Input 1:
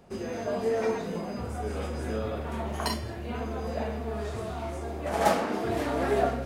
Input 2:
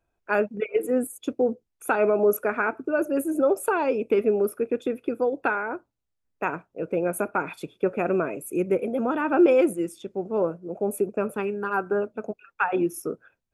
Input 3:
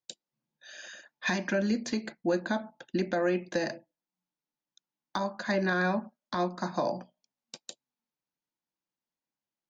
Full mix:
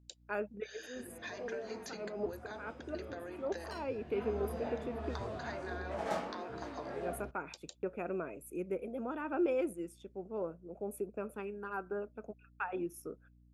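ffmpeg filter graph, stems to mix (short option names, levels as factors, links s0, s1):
-filter_complex "[0:a]adynamicsmooth=sensitivity=4:basefreq=5100,flanger=delay=15.5:depth=6.2:speed=1.4,adelay=850,volume=0.596,afade=t=in:st=3.86:d=0.46:silence=0.316228,afade=t=out:st=5.74:d=0.68:silence=0.354813[s0];[1:a]agate=range=0.0562:threshold=0.00501:ratio=16:detection=peak,aeval=exprs='val(0)+0.00398*(sin(2*PI*60*n/s)+sin(2*PI*2*60*n/s)/2+sin(2*PI*3*60*n/s)/3+sin(2*PI*4*60*n/s)/4+sin(2*PI*5*60*n/s)/5)':c=same,volume=0.2[s1];[2:a]highpass=f=330:w=0.5412,highpass=f=330:w=1.3066,acompressor=threshold=0.0112:ratio=5,volume=0.562,asplit=2[s2][s3];[s3]apad=whole_len=597090[s4];[s1][s4]sidechaincompress=threshold=0.001:ratio=8:attack=27:release=110[s5];[s0][s5][s2]amix=inputs=3:normalize=0"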